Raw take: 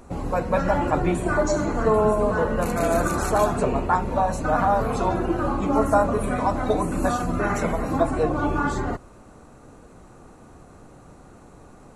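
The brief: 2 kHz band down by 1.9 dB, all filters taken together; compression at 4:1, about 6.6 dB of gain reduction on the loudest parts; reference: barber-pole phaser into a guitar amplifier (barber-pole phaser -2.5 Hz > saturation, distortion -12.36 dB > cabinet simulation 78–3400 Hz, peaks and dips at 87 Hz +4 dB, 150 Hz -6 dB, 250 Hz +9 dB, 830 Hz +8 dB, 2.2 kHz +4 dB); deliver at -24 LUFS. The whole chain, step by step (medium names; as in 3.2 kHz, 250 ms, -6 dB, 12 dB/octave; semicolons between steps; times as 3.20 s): peaking EQ 2 kHz -4.5 dB; compression 4:1, threshold -23 dBFS; barber-pole phaser -2.5 Hz; saturation -27.5 dBFS; cabinet simulation 78–3400 Hz, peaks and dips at 87 Hz +4 dB, 150 Hz -6 dB, 250 Hz +9 dB, 830 Hz +8 dB, 2.2 kHz +4 dB; trim +6.5 dB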